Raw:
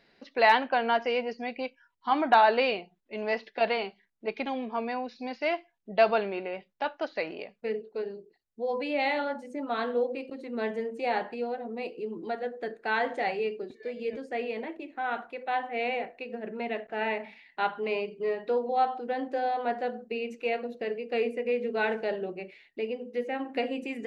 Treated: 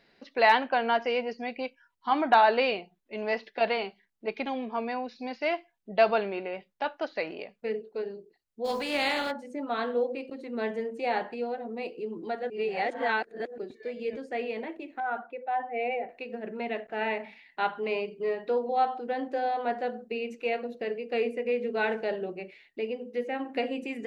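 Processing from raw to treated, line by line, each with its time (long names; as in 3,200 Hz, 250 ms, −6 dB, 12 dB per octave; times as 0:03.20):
0:08.64–0:09.30: compressing power law on the bin magnitudes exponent 0.58
0:12.50–0:13.58: reverse
0:15.00–0:16.09: expanding power law on the bin magnitudes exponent 1.5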